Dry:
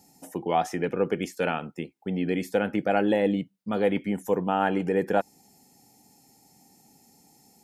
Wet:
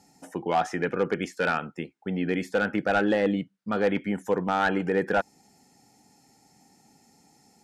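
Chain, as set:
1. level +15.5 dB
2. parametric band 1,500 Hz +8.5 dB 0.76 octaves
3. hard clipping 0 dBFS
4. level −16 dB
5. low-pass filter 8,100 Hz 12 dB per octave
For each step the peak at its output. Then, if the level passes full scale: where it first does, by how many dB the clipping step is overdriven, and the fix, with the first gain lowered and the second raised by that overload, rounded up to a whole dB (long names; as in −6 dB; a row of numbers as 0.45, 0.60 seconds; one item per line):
+6.5, +9.0, 0.0, −16.0, −15.5 dBFS
step 1, 9.0 dB
step 1 +6.5 dB, step 4 −7 dB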